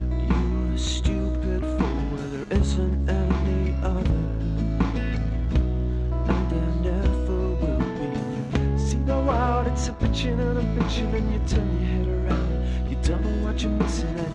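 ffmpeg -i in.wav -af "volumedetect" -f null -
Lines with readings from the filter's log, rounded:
mean_volume: -23.0 dB
max_volume: -9.9 dB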